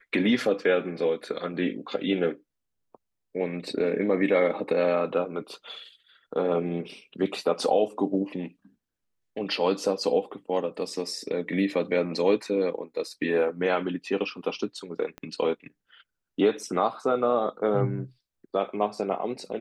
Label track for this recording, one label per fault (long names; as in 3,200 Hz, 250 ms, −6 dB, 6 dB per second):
15.180000	15.180000	click −25 dBFS